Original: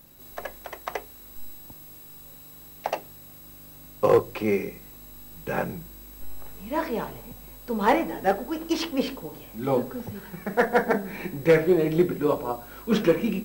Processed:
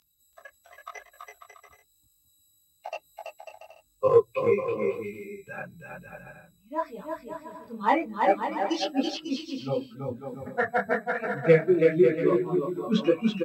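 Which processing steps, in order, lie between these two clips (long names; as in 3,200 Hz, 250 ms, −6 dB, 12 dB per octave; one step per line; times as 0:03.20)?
spectral dynamics exaggerated over time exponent 2
upward compression, threshold −41 dBFS
Chebyshev band-pass filter 130–4,900 Hz, order 2
bouncing-ball delay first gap 330 ms, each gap 0.65×, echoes 5
micro pitch shift up and down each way 34 cents
level +6 dB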